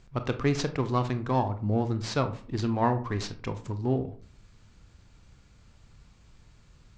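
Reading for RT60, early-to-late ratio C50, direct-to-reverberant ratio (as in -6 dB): 0.45 s, 13.0 dB, 8.5 dB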